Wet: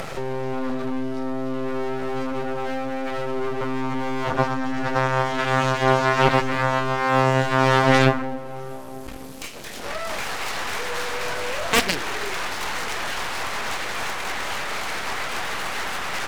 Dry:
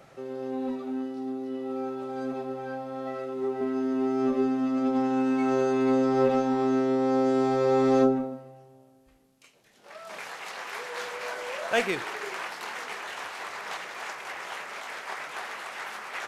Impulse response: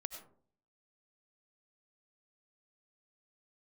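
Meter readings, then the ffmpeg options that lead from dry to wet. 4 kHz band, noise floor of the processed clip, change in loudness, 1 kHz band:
+12.5 dB, -34 dBFS, +4.5 dB, +9.0 dB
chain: -af "acompressor=mode=upward:threshold=-27dB:ratio=2.5,aeval=exprs='max(val(0),0)':c=same,aeval=exprs='0.266*(cos(1*acos(clip(val(0)/0.266,-1,1)))-cos(1*PI/2))+0.106*(cos(7*acos(clip(val(0)/0.266,-1,1)))-cos(7*PI/2))':c=same,volume=7dB"

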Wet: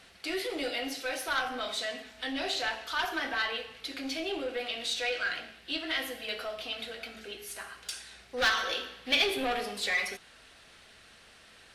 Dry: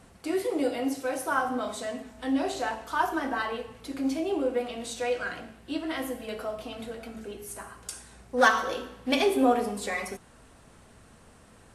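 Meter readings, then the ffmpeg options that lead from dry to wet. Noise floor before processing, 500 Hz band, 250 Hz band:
-55 dBFS, -7.0 dB, -10.5 dB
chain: -filter_complex "[0:a]asplit=2[a][b];[b]highpass=f=720:p=1,volume=20dB,asoftclip=type=tanh:threshold=-7.5dB[c];[a][c]amix=inputs=2:normalize=0,lowpass=f=4.9k:p=1,volume=-6dB,equalizer=f=125:t=o:w=1:g=-7,equalizer=f=250:t=o:w=1:g=-8,equalizer=f=500:t=o:w=1:g=-6,equalizer=f=1k:t=o:w=1:g=-12,equalizer=f=4k:t=o:w=1:g=5,equalizer=f=8k:t=o:w=1:g=-8,volume=-5dB"

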